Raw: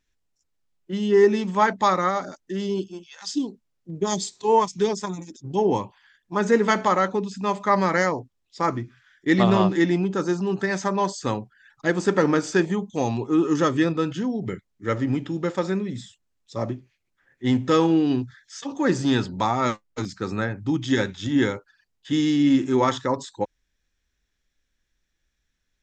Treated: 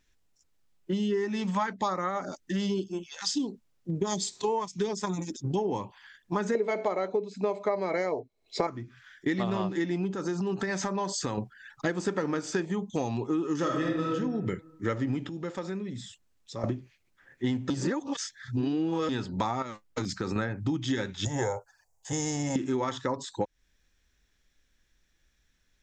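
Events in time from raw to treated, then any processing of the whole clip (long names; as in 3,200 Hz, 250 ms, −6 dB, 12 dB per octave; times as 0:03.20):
0:00.92–0:03.39: auto-filter notch sine 0.49 Hz → 1.7 Hz 320–5,000 Hz
0:06.55–0:08.67: hollow resonant body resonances 440/620/2,200/4,000 Hz, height 17 dB, ringing for 25 ms
0:10.13–0:11.38: downward compressor 3 to 1, threshold −32 dBFS
0:13.56–0:14.09: thrown reverb, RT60 0.91 s, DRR −1.5 dB
0:15.29–0:16.64: downward compressor 2 to 1, threshold −48 dBFS
0:17.70–0:19.09: reverse
0:19.62–0:20.36: downward compressor 8 to 1, threshold −30 dBFS
0:21.25–0:22.56: drawn EQ curve 110 Hz 0 dB, 190 Hz −12 dB, 270 Hz −21 dB, 480 Hz +2 dB, 820 Hz +12 dB, 1,300 Hz −7 dB, 2,300 Hz −10 dB, 3,400 Hz −18 dB, 6,800 Hz +8 dB, 11,000 Hz +4 dB
whole clip: downward compressor 10 to 1, threshold −31 dBFS; level +5 dB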